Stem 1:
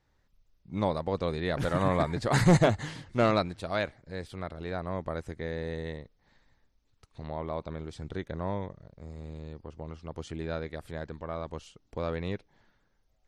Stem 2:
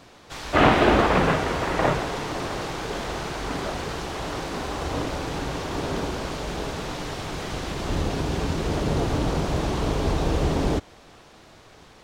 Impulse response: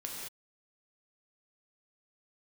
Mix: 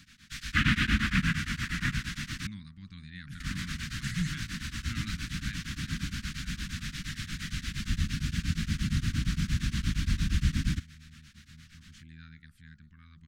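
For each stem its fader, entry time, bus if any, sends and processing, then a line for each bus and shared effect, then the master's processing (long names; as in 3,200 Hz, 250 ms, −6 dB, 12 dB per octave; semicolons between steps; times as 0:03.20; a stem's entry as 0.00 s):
−9.5 dB, 1.70 s, no send, hum removal 55.34 Hz, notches 26
+0.5 dB, 0.00 s, muted 0:02.47–0:03.40, no send, tremolo along a rectified sine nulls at 8.6 Hz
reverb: not used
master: elliptic band-stop filter 220–1,600 Hz, stop band 70 dB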